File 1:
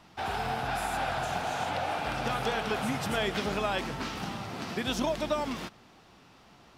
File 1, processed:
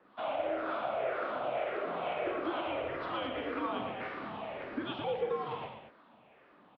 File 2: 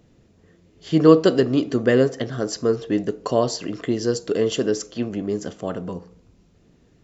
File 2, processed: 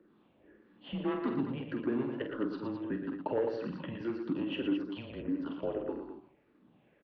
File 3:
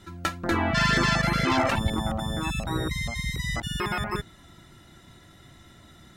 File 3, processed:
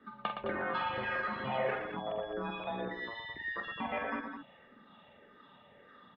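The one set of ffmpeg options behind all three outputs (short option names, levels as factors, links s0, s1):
-filter_complex "[0:a]afftfilt=real='re*pow(10,11/40*sin(2*PI*(0.55*log(max(b,1)*sr/1024/100)/log(2)-(-1.7)*(pts-256)/sr)))':imag='im*pow(10,11/40*sin(2*PI*(0.55*log(max(b,1)*sr/1024/100)/log(2)-(-1.7)*(pts-256)/sr)))':win_size=1024:overlap=0.75,volume=3.55,asoftclip=hard,volume=0.282,acompressor=threshold=0.0501:ratio=6,acrossover=split=750[s0][s1];[s0]aeval=exprs='val(0)*(1-0.5/2+0.5/2*cos(2*PI*2.1*n/s))':c=same[s2];[s1]aeval=exprs='val(0)*(1-0.5/2-0.5/2*cos(2*PI*2.1*n/s))':c=same[s3];[s2][s3]amix=inputs=2:normalize=0,highshelf=f=2100:g=-10,aecho=1:1:47|116|211:0.422|0.447|0.376,highpass=f=380:t=q:w=0.5412,highpass=f=380:t=q:w=1.307,lowpass=f=3500:t=q:w=0.5176,lowpass=f=3500:t=q:w=0.7071,lowpass=f=3500:t=q:w=1.932,afreqshift=-130"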